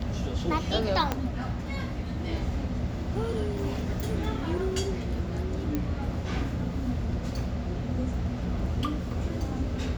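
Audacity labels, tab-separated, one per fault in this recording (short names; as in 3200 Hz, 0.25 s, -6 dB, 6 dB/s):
1.120000	1.120000	pop -12 dBFS
5.750000	5.750000	pop -16 dBFS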